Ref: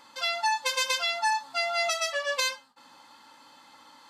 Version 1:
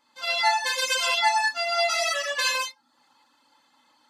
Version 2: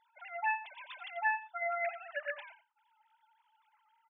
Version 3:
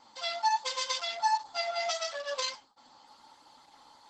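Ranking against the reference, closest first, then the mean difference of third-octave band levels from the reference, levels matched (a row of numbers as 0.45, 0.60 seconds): 3, 1, 2; 4.5, 7.0, 13.0 decibels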